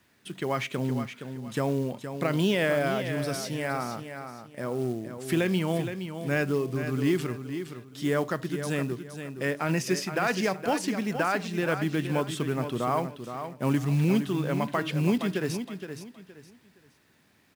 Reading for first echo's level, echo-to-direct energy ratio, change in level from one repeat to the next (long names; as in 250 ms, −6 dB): −9.0 dB, −8.5 dB, −11.0 dB